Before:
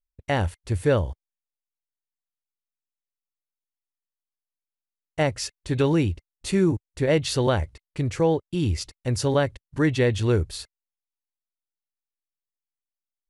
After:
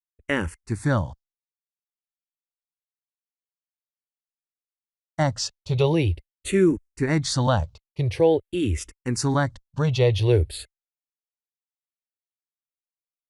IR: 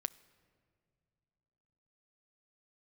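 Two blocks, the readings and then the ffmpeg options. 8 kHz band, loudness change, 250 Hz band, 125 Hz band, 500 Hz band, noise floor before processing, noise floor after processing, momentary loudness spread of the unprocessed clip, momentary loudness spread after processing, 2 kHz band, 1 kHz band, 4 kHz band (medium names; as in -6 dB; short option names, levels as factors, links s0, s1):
+2.0 dB, +0.5 dB, 0.0 dB, +1.5 dB, +0.5 dB, under -85 dBFS, under -85 dBFS, 9 LU, 10 LU, +0.5 dB, +1.5 dB, +1.0 dB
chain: -filter_complex "[0:a]agate=range=0.0224:threshold=0.0158:ratio=3:detection=peak,asplit=2[s0][s1];[s1]afreqshift=-0.47[s2];[s0][s2]amix=inputs=2:normalize=1,volume=1.58"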